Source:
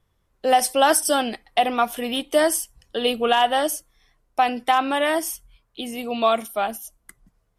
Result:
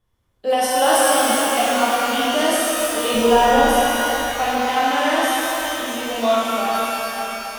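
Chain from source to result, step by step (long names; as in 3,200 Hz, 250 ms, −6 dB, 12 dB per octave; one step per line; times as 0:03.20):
delay that plays each chunk backwards 383 ms, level −7 dB
0:03.14–0:03.63: spectral tilt −4 dB per octave
reverb with rising layers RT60 3 s, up +12 semitones, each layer −8 dB, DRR −7.5 dB
level −6 dB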